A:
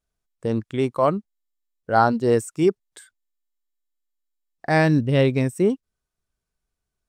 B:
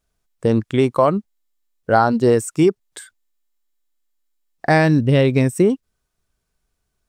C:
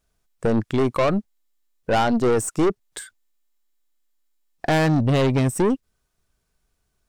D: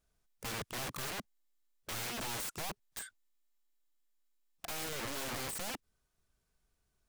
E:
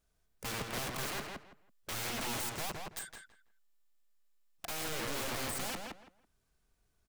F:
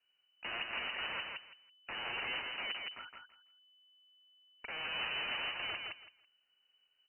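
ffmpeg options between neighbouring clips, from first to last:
-af "acompressor=threshold=-19dB:ratio=6,volume=8.5dB"
-af "aeval=exprs='(tanh(7.94*val(0)+0.35)-tanh(0.35))/7.94':c=same,volume=2.5dB"
-af "aeval=exprs='(mod(23.7*val(0)+1,2)-1)/23.7':c=same,volume=-7dB"
-filter_complex "[0:a]asplit=2[a][b];[b]adelay=165,lowpass=f=3k:p=1,volume=-3dB,asplit=2[c][d];[d]adelay=165,lowpass=f=3k:p=1,volume=0.22,asplit=2[e][f];[f]adelay=165,lowpass=f=3k:p=1,volume=0.22[g];[a][c][e][g]amix=inputs=4:normalize=0,volume=1dB"
-af "lowpass=f=2.6k:t=q:w=0.5098,lowpass=f=2.6k:t=q:w=0.6013,lowpass=f=2.6k:t=q:w=0.9,lowpass=f=2.6k:t=q:w=2.563,afreqshift=-3000"

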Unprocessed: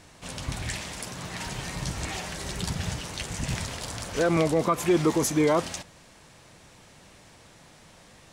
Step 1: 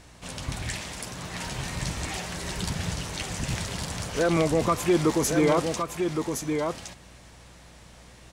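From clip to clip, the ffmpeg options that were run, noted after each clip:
-af "aeval=exprs='val(0)+0.00178*(sin(2*PI*60*n/s)+sin(2*PI*2*60*n/s)/2+sin(2*PI*3*60*n/s)/3+sin(2*PI*4*60*n/s)/4+sin(2*PI*5*60*n/s)/5)':c=same,aecho=1:1:1115:0.531"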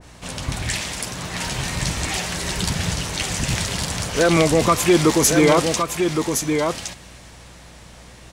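-af "adynamicequalizer=threshold=0.0126:dfrequency=1700:dqfactor=0.7:tfrequency=1700:tqfactor=0.7:attack=5:release=100:ratio=0.375:range=2.5:mode=boostabove:tftype=highshelf,volume=6.5dB"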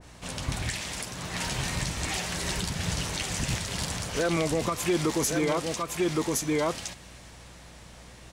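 -af "alimiter=limit=-11.5dB:level=0:latency=1:release=324,volume=-5dB"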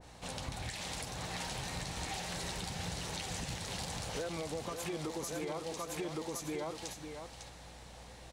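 -filter_complex "[0:a]equalizer=f=500:t=o:w=0.33:g=5,equalizer=f=800:t=o:w=0.33:g=8,equalizer=f=4k:t=o:w=0.33:g=4,acompressor=threshold=-31dB:ratio=6,asplit=2[a][b];[b]aecho=0:1:552:0.422[c];[a][c]amix=inputs=2:normalize=0,volume=-6dB"

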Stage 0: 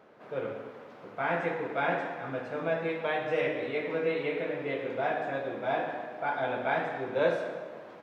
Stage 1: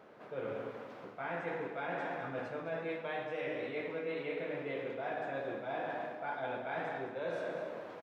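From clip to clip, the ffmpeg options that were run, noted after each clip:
-af "areverse,acompressor=threshold=-36dB:ratio=6,areverse,aecho=1:1:208:0.266"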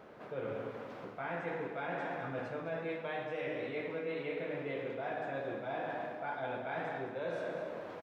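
-filter_complex "[0:a]asplit=2[a][b];[b]acompressor=threshold=-45dB:ratio=6,volume=-2dB[c];[a][c]amix=inputs=2:normalize=0,lowshelf=f=95:g=9.5,volume=-2.5dB"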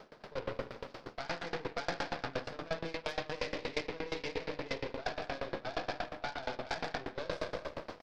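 -af "aeval=exprs='0.0501*(cos(1*acos(clip(val(0)/0.0501,-1,1)))-cos(1*PI/2))+0.00501*(cos(4*acos(clip(val(0)/0.0501,-1,1)))-cos(4*PI/2))+0.00178*(cos(7*acos(clip(val(0)/0.0501,-1,1)))-cos(7*PI/2))+0.00355*(cos(8*acos(clip(val(0)/0.0501,-1,1)))-cos(8*PI/2))':c=same,equalizer=f=4.9k:t=o:w=0.83:g=14.5,aeval=exprs='val(0)*pow(10,-23*if(lt(mod(8.5*n/s,1),2*abs(8.5)/1000),1-mod(8.5*n/s,1)/(2*abs(8.5)/1000),(mod(8.5*n/s,1)-2*abs(8.5)/1000)/(1-2*abs(8.5)/1000))/20)':c=same,volume=6dB"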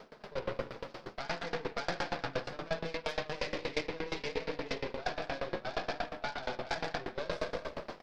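-af "flanger=delay=4.2:depth=2:regen=-46:speed=0.66:shape=triangular,volume=5.5dB"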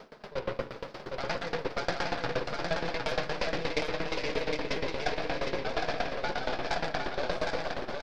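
-af "aecho=1:1:760|1292|1664|1925|2108:0.631|0.398|0.251|0.158|0.1,volume=3dB"

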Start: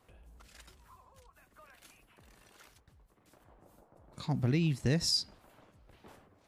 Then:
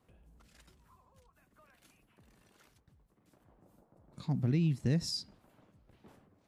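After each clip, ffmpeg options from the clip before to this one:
-af "equalizer=f=180:t=o:w=2.1:g=8.5,volume=-7.5dB"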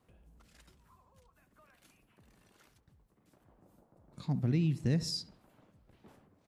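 -filter_complex "[0:a]asplit=2[a][b];[b]adelay=68,lowpass=f=2.4k:p=1,volume=-17dB,asplit=2[c][d];[d]adelay=68,lowpass=f=2.4k:p=1,volume=0.55,asplit=2[e][f];[f]adelay=68,lowpass=f=2.4k:p=1,volume=0.55,asplit=2[g][h];[h]adelay=68,lowpass=f=2.4k:p=1,volume=0.55,asplit=2[i][j];[j]adelay=68,lowpass=f=2.4k:p=1,volume=0.55[k];[a][c][e][g][i][k]amix=inputs=6:normalize=0"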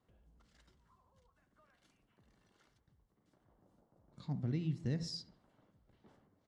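-af "lowpass=6.5k,bandreject=f=2.5k:w=8.1,bandreject=f=84.37:t=h:w=4,bandreject=f=168.74:t=h:w=4,bandreject=f=253.11:t=h:w=4,bandreject=f=337.48:t=h:w=4,bandreject=f=421.85:t=h:w=4,bandreject=f=506.22:t=h:w=4,bandreject=f=590.59:t=h:w=4,bandreject=f=674.96:t=h:w=4,bandreject=f=759.33:t=h:w=4,bandreject=f=843.7:t=h:w=4,bandreject=f=928.07:t=h:w=4,bandreject=f=1.01244k:t=h:w=4,bandreject=f=1.09681k:t=h:w=4,bandreject=f=1.18118k:t=h:w=4,bandreject=f=1.26555k:t=h:w=4,bandreject=f=1.34992k:t=h:w=4,bandreject=f=1.43429k:t=h:w=4,bandreject=f=1.51866k:t=h:w=4,bandreject=f=1.60303k:t=h:w=4,bandreject=f=1.6874k:t=h:w=4,bandreject=f=1.77177k:t=h:w=4,bandreject=f=1.85614k:t=h:w=4,bandreject=f=1.94051k:t=h:w=4,bandreject=f=2.02488k:t=h:w=4,bandreject=f=2.10925k:t=h:w=4,bandreject=f=2.19362k:t=h:w=4,bandreject=f=2.27799k:t=h:w=4,bandreject=f=2.36236k:t=h:w=4,bandreject=f=2.44673k:t=h:w=4,bandreject=f=2.5311k:t=h:w=4,volume=-6dB"

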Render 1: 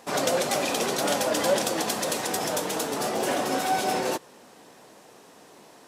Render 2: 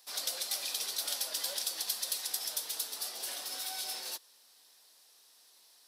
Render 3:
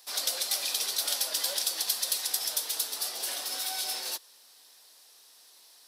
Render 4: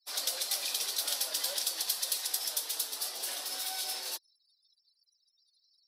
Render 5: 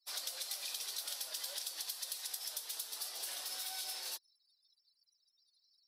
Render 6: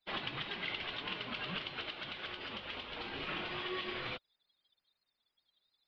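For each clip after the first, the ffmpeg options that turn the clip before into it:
-filter_complex "[0:a]aderivative,acrossover=split=320|1200|6700[a][b][c][d];[c]aexciter=amount=1.8:drive=7.8:freq=3.6k[e];[a][b][e][d]amix=inputs=4:normalize=0,volume=-4dB"
-af "highpass=180,volume=5.5dB"
-af "bandreject=f=60:t=h:w=6,bandreject=f=120:t=h:w=6,bandreject=f=180:t=h:w=6,bandreject=f=240:t=h:w=6,afftfilt=real='re*gte(hypot(re,im),0.00355)':imag='im*gte(hypot(re,im),0.00355)':win_size=1024:overlap=0.75,volume=-3dB"
-af "lowshelf=f=420:g=-9.5,acompressor=threshold=-35dB:ratio=6,volume=-3dB"
-af "highpass=f=330:t=q:w=0.5412,highpass=f=330:t=q:w=1.307,lowpass=f=3.2k:t=q:w=0.5176,lowpass=f=3.2k:t=q:w=0.7071,lowpass=f=3.2k:t=q:w=1.932,afreqshift=-390,volume=12dB"

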